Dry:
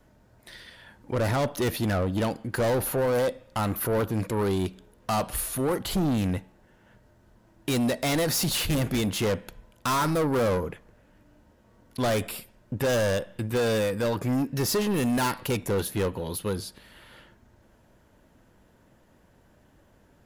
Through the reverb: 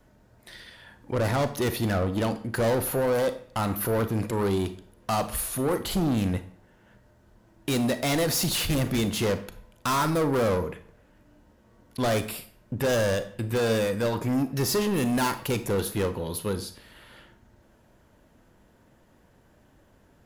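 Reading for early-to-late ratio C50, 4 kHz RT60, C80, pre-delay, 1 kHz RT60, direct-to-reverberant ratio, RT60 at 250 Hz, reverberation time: 14.0 dB, 0.40 s, 17.5 dB, 31 ms, 0.50 s, 11.0 dB, 0.50 s, 0.50 s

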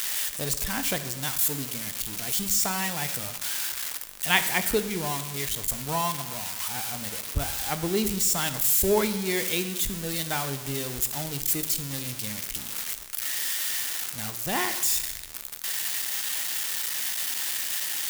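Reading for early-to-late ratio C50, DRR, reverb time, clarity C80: 12.0 dB, 9.5 dB, 1.1 s, 13.5 dB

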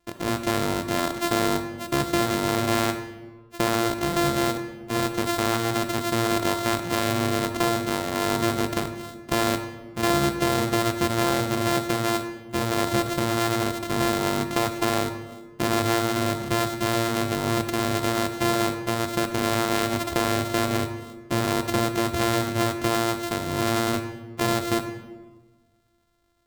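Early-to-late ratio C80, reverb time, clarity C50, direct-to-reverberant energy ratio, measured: 11.5 dB, 1.3 s, 9.5 dB, 8.5 dB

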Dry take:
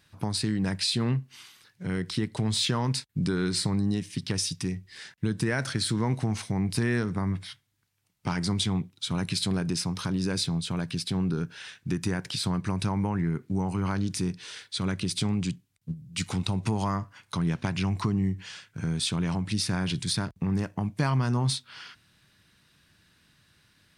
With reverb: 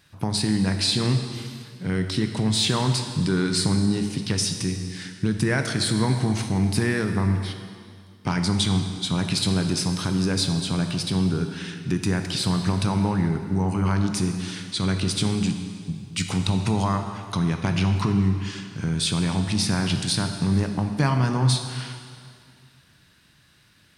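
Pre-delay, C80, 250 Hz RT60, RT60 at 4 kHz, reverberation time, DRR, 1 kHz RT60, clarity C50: 7 ms, 7.5 dB, 2.2 s, 2.1 s, 2.2 s, 5.5 dB, 2.2 s, 6.5 dB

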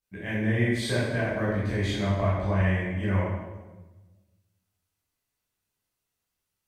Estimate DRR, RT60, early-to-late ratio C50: -10.0 dB, 1.2 s, -0.5 dB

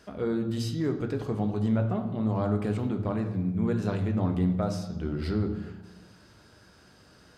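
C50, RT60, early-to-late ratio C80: 9.0 dB, 1.1 s, 11.0 dB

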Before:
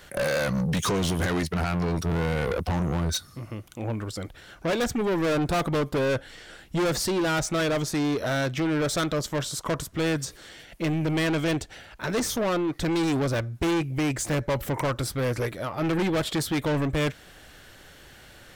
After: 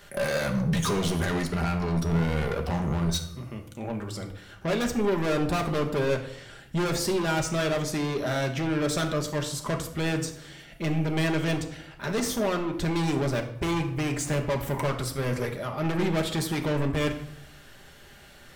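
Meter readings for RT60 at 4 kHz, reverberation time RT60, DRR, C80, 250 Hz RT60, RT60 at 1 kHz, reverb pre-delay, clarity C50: 0.50 s, 0.75 s, 3.0 dB, 13.0 dB, 0.90 s, 0.70 s, 5 ms, 9.5 dB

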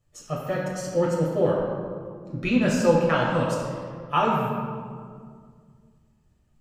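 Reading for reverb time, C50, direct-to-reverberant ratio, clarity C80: 2.0 s, 0.5 dB, -4.0 dB, 2.0 dB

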